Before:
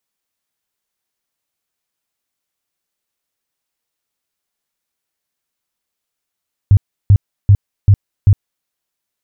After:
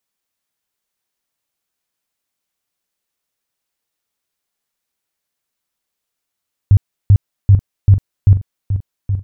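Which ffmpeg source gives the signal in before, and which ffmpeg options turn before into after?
-f lavfi -i "aevalsrc='0.668*sin(2*PI*100*mod(t,0.39))*lt(mod(t,0.39),6/100)':duration=1.95:sample_rate=44100"
-af "aecho=1:1:822|1644|2466|3288:0.335|0.134|0.0536|0.0214"

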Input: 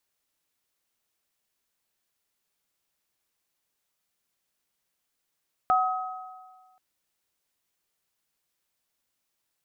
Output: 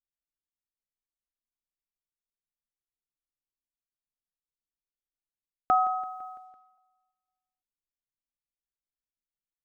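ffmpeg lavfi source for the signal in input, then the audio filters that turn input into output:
-f lavfi -i "aevalsrc='0.1*pow(10,-3*t/1.58)*sin(2*PI*746*t)+0.1*pow(10,-3*t/1.4)*sin(2*PI*1270*t)':duration=1.08:sample_rate=44100"
-af "anlmdn=0.0001,equalizer=frequency=290:width=1.2:gain=6.5,aecho=1:1:168|336|504|672|840:0.126|0.0743|0.0438|0.0259|0.0153"

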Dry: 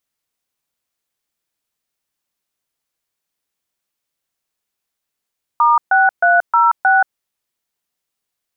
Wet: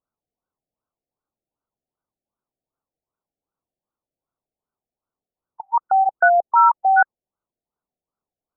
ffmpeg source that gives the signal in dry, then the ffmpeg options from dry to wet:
-f lavfi -i "aevalsrc='0.266*clip(min(mod(t,0.312),0.179-mod(t,0.312))/0.002,0,1)*(eq(floor(t/0.312),0)*(sin(2*PI*941*mod(t,0.312))+sin(2*PI*1209*mod(t,0.312)))+eq(floor(t/0.312),1)*(sin(2*PI*770*mod(t,0.312))+sin(2*PI*1477*mod(t,0.312)))+eq(floor(t/0.312),2)*(sin(2*PI*697*mod(t,0.312))+sin(2*PI*1477*mod(t,0.312)))+eq(floor(t/0.312),3)*(sin(2*PI*941*mod(t,0.312))+sin(2*PI*1336*mod(t,0.312)))+eq(floor(t/0.312),4)*(sin(2*PI*770*mod(t,0.312))+sin(2*PI*1477*mod(t,0.312))))':duration=1.56:sample_rate=44100"
-af "afftfilt=real='re*lt(b*sr/1024,770*pow(1600/770,0.5+0.5*sin(2*PI*2.6*pts/sr)))':imag='im*lt(b*sr/1024,770*pow(1600/770,0.5+0.5*sin(2*PI*2.6*pts/sr)))':win_size=1024:overlap=0.75"

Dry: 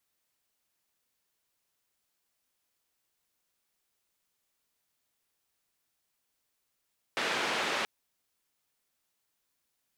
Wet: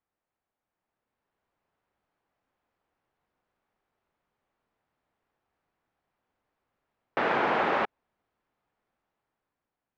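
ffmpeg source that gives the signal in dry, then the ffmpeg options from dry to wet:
-f lavfi -i "anoisesrc=color=white:duration=0.68:sample_rate=44100:seed=1,highpass=frequency=250,lowpass=frequency=2700,volume=-17.6dB"
-af "lowpass=1400,equalizer=frequency=780:width_type=o:width=0.33:gain=3,dynaudnorm=framelen=330:gausssize=7:maxgain=8.5dB"

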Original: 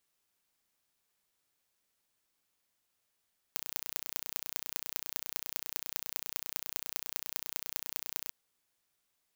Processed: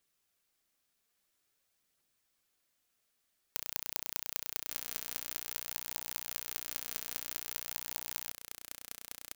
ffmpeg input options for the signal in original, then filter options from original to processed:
-f lavfi -i "aevalsrc='0.531*eq(mod(n,1470),0)*(0.5+0.5*eq(mod(n,8820),0))':duration=4.74:sample_rate=44100"
-af "equalizer=frequency=920:width_type=o:width=0.22:gain=-6.5,aecho=1:1:1154:0.447,aphaser=in_gain=1:out_gain=1:delay=4.7:decay=0.23:speed=0.5:type=triangular"

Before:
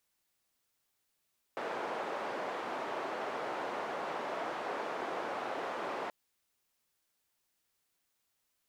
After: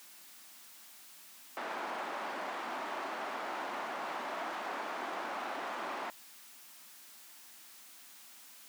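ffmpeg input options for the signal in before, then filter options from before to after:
-f lavfi -i "anoisesrc=color=white:duration=4.53:sample_rate=44100:seed=1,highpass=frequency=430,lowpass=frequency=860,volume=-16.8dB"
-af "aeval=exprs='val(0)+0.5*0.00376*sgn(val(0))':channel_layout=same,highpass=frequency=200:width=0.5412,highpass=frequency=200:width=1.3066,equalizer=frequency=460:width_type=o:width=0.71:gain=-10"

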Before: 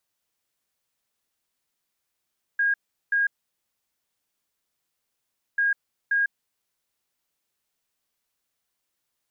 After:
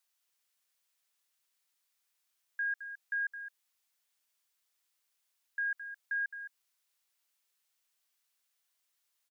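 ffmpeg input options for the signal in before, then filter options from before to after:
-f lavfi -i "aevalsrc='0.112*sin(2*PI*1630*t)*clip(min(mod(mod(t,2.99),0.53),0.15-mod(mod(t,2.99),0.53))/0.005,0,1)*lt(mod(t,2.99),1.06)':duration=5.98:sample_rate=44100"
-filter_complex "[0:a]highpass=frequency=1400:poles=1,alimiter=level_in=5.5dB:limit=-24dB:level=0:latency=1:release=72,volume=-5.5dB,asplit=2[link_01][link_02];[link_02]aecho=0:1:215:0.299[link_03];[link_01][link_03]amix=inputs=2:normalize=0"

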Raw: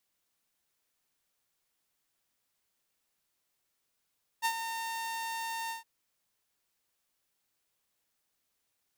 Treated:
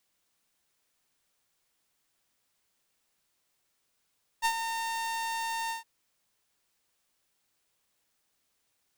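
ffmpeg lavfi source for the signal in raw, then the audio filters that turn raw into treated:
-f lavfi -i "aevalsrc='0.0708*(2*mod(911*t,1)-1)':duration=1.415:sample_rate=44100,afade=type=in:duration=0.034,afade=type=out:start_time=0.034:duration=0.068:silence=0.355,afade=type=out:start_time=1.28:duration=0.135"
-filter_complex "[0:a]equalizer=frequency=13000:width=3.9:gain=-8.5,asplit=2[link_01][link_02];[link_02]aeval=exprs='clip(val(0),-1,0.0112)':channel_layout=same,volume=-4dB[link_03];[link_01][link_03]amix=inputs=2:normalize=0"

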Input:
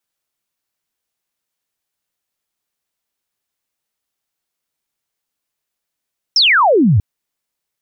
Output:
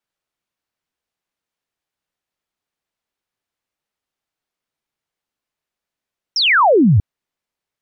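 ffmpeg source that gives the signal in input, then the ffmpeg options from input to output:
-f lavfi -i "aevalsrc='0.398*clip(t/0.002,0,1)*clip((0.64-t)/0.002,0,1)*sin(2*PI*5700*0.64/log(87/5700)*(exp(log(87/5700)*t/0.64)-1))':duration=0.64:sample_rate=44100"
-af "lowpass=frequency=2900:poles=1"

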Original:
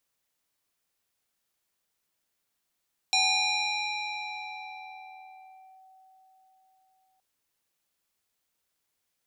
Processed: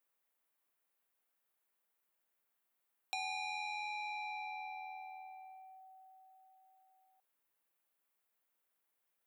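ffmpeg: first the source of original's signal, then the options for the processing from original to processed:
-f lavfi -i "aevalsrc='0.1*pow(10,-3*t/5)*sin(2*PI*758*t+3.4*clip(1-t/2.69,0,1)*sin(2*PI*2.11*758*t))':duration=4.07:sample_rate=44100"
-af "highpass=frequency=520:poles=1,equalizer=frequency=5400:width_type=o:width=1.7:gain=-14.5,acompressor=threshold=-40dB:ratio=3"

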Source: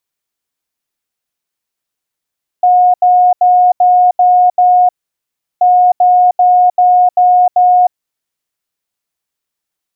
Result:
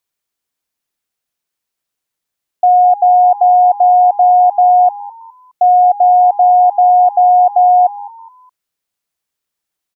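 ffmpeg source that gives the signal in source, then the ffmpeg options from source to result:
-f lavfi -i "aevalsrc='0.596*sin(2*PI*723*t)*clip(min(mod(mod(t,2.98),0.39),0.31-mod(mod(t,2.98),0.39))/0.005,0,1)*lt(mod(t,2.98),2.34)':duration=5.96:sample_rate=44100"
-filter_complex "[0:a]asplit=4[link_01][link_02][link_03][link_04];[link_02]adelay=208,afreqshift=95,volume=-19.5dB[link_05];[link_03]adelay=416,afreqshift=190,volume=-28.1dB[link_06];[link_04]adelay=624,afreqshift=285,volume=-36.8dB[link_07];[link_01][link_05][link_06][link_07]amix=inputs=4:normalize=0"

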